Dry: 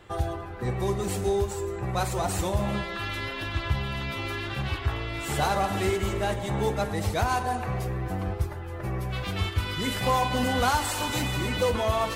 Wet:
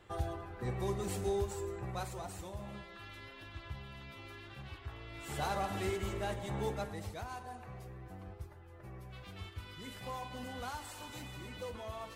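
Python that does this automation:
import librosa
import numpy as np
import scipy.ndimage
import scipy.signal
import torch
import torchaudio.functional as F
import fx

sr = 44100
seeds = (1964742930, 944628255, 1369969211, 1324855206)

y = fx.gain(x, sr, db=fx.line((1.7, -8.5), (2.39, -18.0), (4.91, -18.0), (5.5, -10.0), (6.73, -10.0), (7.24, -18.5)))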